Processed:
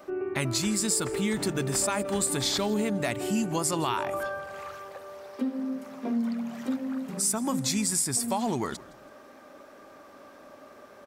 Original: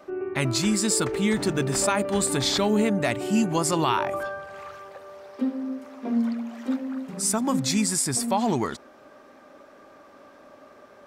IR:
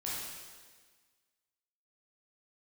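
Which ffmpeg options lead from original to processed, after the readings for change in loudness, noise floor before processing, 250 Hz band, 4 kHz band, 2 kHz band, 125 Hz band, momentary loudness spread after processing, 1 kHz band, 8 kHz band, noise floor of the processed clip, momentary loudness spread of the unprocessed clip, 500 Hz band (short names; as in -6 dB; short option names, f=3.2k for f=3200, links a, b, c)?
-3.5 dB, -51 dBFS, -4.5 dB, -3.0 dB, -4.0 dB, -4.5 dB, 11 LU, -4.5 dB, -1.0 dB, -51 dBFS, 13 LU, -4.5 dB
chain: -filter_complex "[0:a]highshelf=f=8.3k:g=9,acompressor=threshold=-28dB:ratio=2,asplit=4[a][b][c][d];[b]adelay=164,afreqshift=-40,volume=-21.5dB[e];[c]adelay=328,afreqshift=-80,volume=-29.7dB[f];[d]adelay=492,afreqshift=-120,volume=-37.9dB[g];[a][e][f][g]amix=inputs=4:normalize=0"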